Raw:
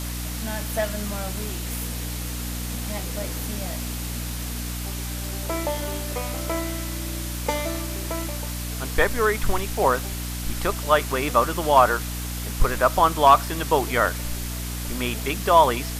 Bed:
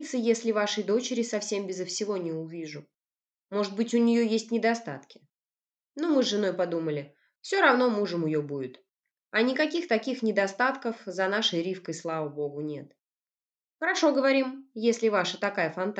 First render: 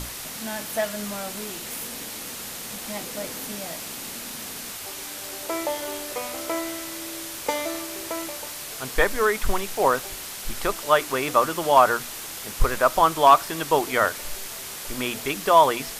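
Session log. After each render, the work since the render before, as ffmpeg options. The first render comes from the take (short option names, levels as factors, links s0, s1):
-af "bandreject=f=60:t=h:w=6,bandreject=f=120:t=h:w=6,bandreject=f=180:t=h:w=6,bandreject=f=240:t=h:w=6,bandreject=f=300:t=h:w=6"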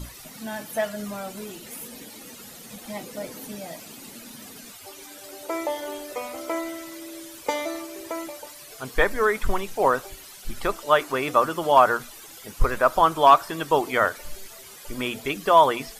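-af "afftdn=nr=13:nf=-36"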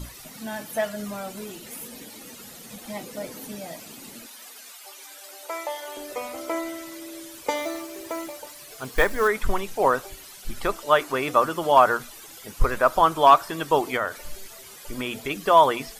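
-filter_complex "[0:a]asettb=1/sr,asplit=3[s0][s1][s2];[s0]atrim=end=4.264[s3];[s1]atrim=start=4.26:end=5.97,asetpts=PTS-STARTPTS,afade=t=in:d=0.004:c=qsin,afade=t=out:st=1.706:d=0.004:c=qsin,highpass=690[s4];[s2]atrim=start=5.966[s5];[s3][s4]acrossfade=d=0.004:c1=hsin:c2=qsin[s6];[s6][s5]acrossfade=d=0.004:c1=qsin:c2=hsin,asettb=1/sr,asplit=3[s7][s8][s9];[s7]atrim=end=7.574[s10];[s8]atrim=start=7.57:end=9.28,asetpts=PTS-STARTPTS,afade=t=in:d=0.004:c=qsin,afade=t=out:st=1.706:d=0.004:c=qsin,acrusher=bits=5:mode=log:mix=0:aa=0.000001[s11];[s9]atrim=start=9.276[s12];[s10][s11]acrossfade=d=0.004:c1=hsin:c2=qsin[s13];[s13][s12]acrossfade=d=0.004:c1=qsin:c2=hsin,asettb=1/sr,asplit=3[s14][s15][s16];[s14]atrim=end=13.964[s17];[s15]atrim=start=13.96:end=15.31,asetpts=PTS-STARTPTS,afade=t=in:d=0.004:c=qsin,afade=t=out:st=1.346:d=0.004:c=qsin,acompressor=threshold=0.0562:ratio=2:attack=3.2:release=140:knee=1:detection=peak[s18];[s16]atrim=start=15.306[s19];[s17][s18]acrossfade=d=0.004:c1=hsin:c2=qsin[s20];[s20][s19]acrossfade=d=0.004:c1=qsin:c2=hsin"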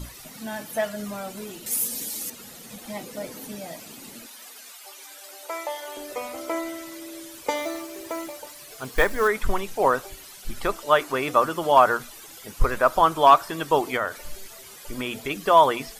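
-filter_complex "[0:a]asettb=1/sr,asplit=3[s0][s1][s2];[s0]atrim=end=1.664[s3];[s1]atrim=start=1.66:end=2.3,asetpts=PTS-STARTPTS,afade=t=in:d=0.004:c=qsin,afade=t=out:st=0.636:d=0.004:c=qsin,bass=f=250:g=1,treble=f=4000:g=14[s4];[s2]atrim=start=2.296[s5];[s3][s4]acrossfade=d=0.004:c1=hsin:c2=qsin[s6];[s6][s5]acrossfade=d=0.004:c1=qsin:c2=hsin"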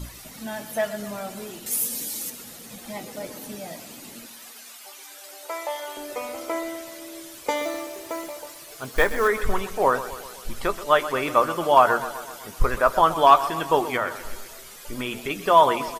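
-filter_complex "[0:a]asplit=2[s0][s1];[s1]adelay=17,volume=0.224[s2];[s0][s2]amix=inputs=2:normalize=0,aecho=1:1:127|254|381|508|635|762:0.2|0.12|0.0718|0.0431|0.0259|0.0155"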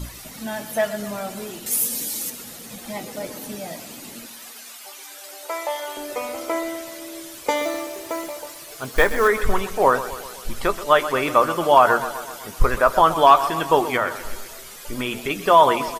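-af "volume=1.5,alimiter=limit=0.708:level=0:latency=1"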